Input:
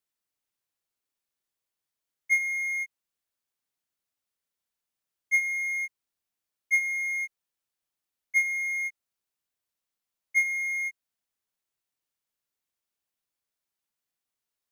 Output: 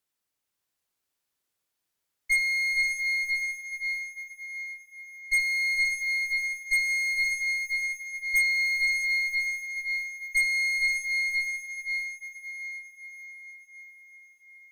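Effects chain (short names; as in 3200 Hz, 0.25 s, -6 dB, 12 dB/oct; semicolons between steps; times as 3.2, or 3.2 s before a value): diffused feedback echo 0.567 s, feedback 55%, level -3.5 dB; added harmonics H 5 -15 dB, 8 -18 dB, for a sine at -13 dBFS; gain -2 dB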